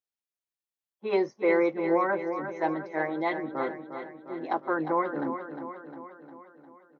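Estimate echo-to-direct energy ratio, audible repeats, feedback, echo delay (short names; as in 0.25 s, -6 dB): -7.5 dB, 6, 57%, 0.354 s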